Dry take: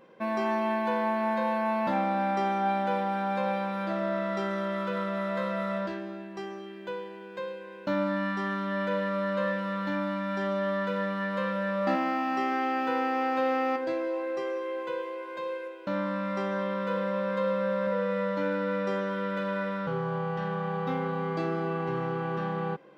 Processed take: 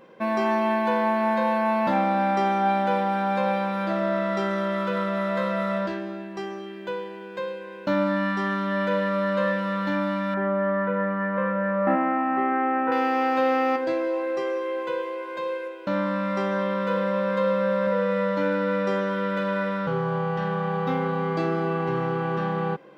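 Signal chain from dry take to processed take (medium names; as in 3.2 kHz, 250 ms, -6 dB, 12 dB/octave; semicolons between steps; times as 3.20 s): 10.34–12.92 s: low-pass 2 kHz 24 dB/octave; trim +5 dB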